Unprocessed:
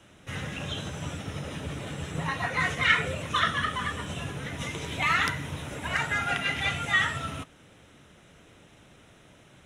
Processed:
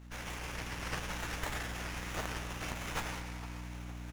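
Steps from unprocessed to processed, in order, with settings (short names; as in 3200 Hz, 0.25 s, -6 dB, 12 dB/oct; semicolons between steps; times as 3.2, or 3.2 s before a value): speed mistake 33 rpm record played at 78 rpm; LPF 3200 Hz 12 dB/oct; doubler 20 ms -13.5 dB; spectral gate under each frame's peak -25 dB weak; reverse; upward compressor, threshold -53 dBFS; reverse; hum 60 Hz, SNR 11 dB; split-band echo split 1500 Hz, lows 0.46 s, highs 0.101 s, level -12.5 dB; spring tank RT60 2.9 s, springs 38/50 ms, chirp 45 ms, DRR 3.5 dB; running maximum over 9 samples; gain +13 dB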